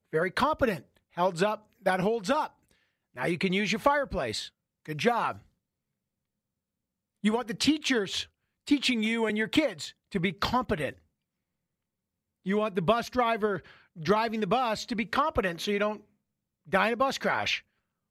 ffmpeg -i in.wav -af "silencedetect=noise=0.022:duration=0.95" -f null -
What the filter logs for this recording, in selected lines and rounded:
silence_start: 5.32
silence_end: 7.24 | silence_duration: 1.92
silence_start: 10.90
silence_end: 12.47 | silence_duration: 1.57